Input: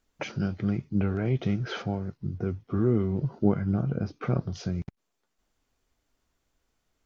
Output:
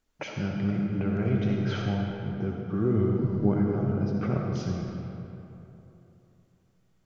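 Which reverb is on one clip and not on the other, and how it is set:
comb and all-pass reverb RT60 3.1 s, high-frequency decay 0.6×, pre-delay 25 ms, DRR −0.5 dB
level −2.5 dB

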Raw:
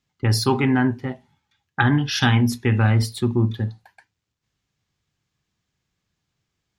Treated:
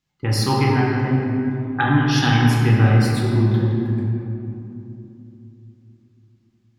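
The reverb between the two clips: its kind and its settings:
rectangular room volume 130 cubic metres, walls hard, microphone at 0.63 metres
level −3 dB

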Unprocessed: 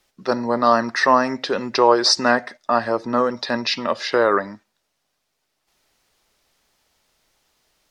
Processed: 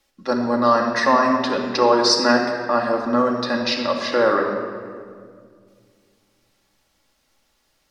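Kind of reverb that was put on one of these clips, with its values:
rectangular room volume 3,800 cubic metres, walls mixed, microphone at 2.3 metres
level −3 dB

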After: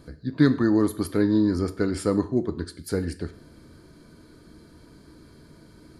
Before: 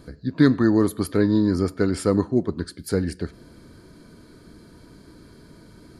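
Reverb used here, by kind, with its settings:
reverb whose tail is shaped and stops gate 180 ms falling, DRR 11 dB
level −3 dB

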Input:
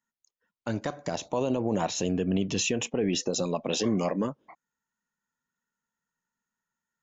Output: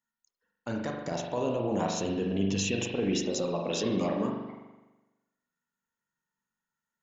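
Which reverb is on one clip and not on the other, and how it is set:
spring reverb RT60 1.1 s, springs 41 ms, chirp 35 ms, DRR 0.5 dB
level −4 dB

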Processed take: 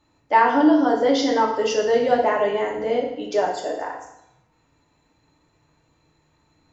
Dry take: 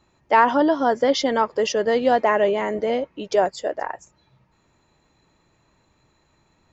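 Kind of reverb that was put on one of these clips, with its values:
feedback delay network reverb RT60 0.79 s, low-frequency decay 1.05×, high-frequency decay 0.95×, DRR −2 dB
level −5 dB

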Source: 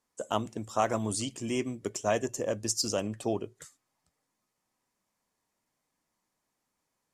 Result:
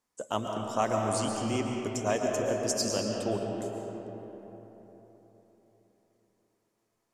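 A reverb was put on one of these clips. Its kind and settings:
comb and all-pass reverb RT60 4.1 s, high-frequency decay 0.45×, pre-delay 90 ms, DRR 0.5 dB
level −1.5 dB

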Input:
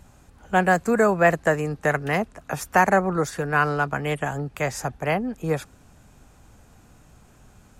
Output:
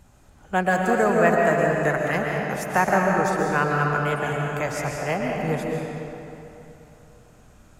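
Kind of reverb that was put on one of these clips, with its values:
comb and all-pass reverb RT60 3 s, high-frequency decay 0.75×, pre-delay 95 ms, DRR −1 dB
level −3 dB

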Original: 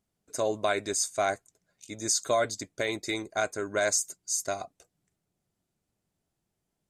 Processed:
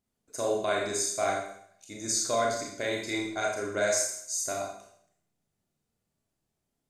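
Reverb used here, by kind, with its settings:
four-comb reverb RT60 0.66 s, combs from 27 ms, DRR −2 dB
level −4.5 dB

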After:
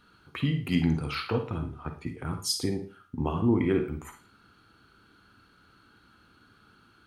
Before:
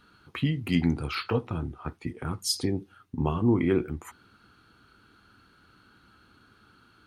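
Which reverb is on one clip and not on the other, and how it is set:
four-comb reverb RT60 0.37 s, DRR 6.5 dB
level −1.5 dB

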